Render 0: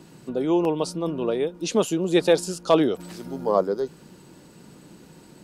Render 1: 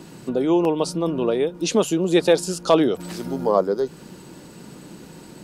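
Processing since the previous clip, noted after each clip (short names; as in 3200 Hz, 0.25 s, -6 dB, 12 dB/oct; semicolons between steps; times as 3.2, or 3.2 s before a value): notches 50/100/150 Hz; in parallel at +1.5 dB: compressor, threshold -29 dBFS, peak gain reduction 16 dB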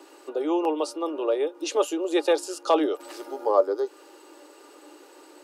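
rippled Chebyshev high-pass 290 Hz, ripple 3 dB; small resonant body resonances 580/820/1200/2800 Hz, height 11 dB, ringing for 95 ms; gain -4 dB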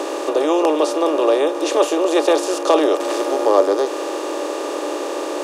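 per-bin compression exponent 0.4; gain +2.5 dB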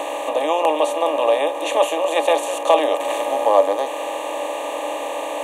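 fixed phaser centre 1400 Hz, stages 6; gain +3.5 dB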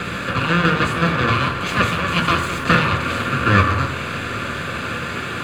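full-wave rectifier; reverb RT60 0.85 s, pre-delay 3 ms, DRR 5 dB; gain -4.5 dB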